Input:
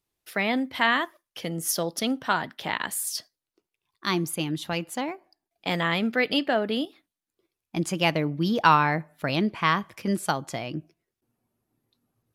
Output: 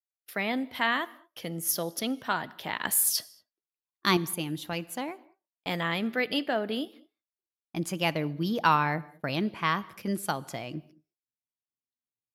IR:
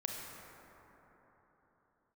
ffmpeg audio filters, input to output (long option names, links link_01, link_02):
-filter_complex "[0:a]agate=range=-29dB:threshold=-46dB:ratio=16:detection=peak,asettb=1/sr,asplit=3[link_01][link_02][link_03];[link_01]atrim=end=2.854[link_04];[link_02]atrim=start=2.85:end=4.17,asetpts=PTS-STARTPTS,afade=type=in:duration=0.004:curve=qsin,afade=type=out:start_time=1.316:duration=0.004:curve=qsin,acontrast=87[link_05];[link_03]atrim=start=4.166[link_06];[link_04][link_05]acrossfade=duration=0.004:curve1=hsin:curve2=qsin[link_07];[link_07][link_06]acrossfade=duration=0.004:curve1=qsin:curve2=hsin,aexciter=amount=2.6:drive=4:freq=11000,asplit=2[link_08][link_09];[1:a]atrim=start_sample=2205,afade=type=out:start_time=0.2:duration=0.01,atrim=end_sample=9261,asetrate=29106,aresample=44100[link_10];[link_09][link_10]afir=irnorm=-1:irlink=0,volume=-18.5dB[link_11];[link_08][link_11]amix=inputs=2:normalize=0,volume=-5.5dB"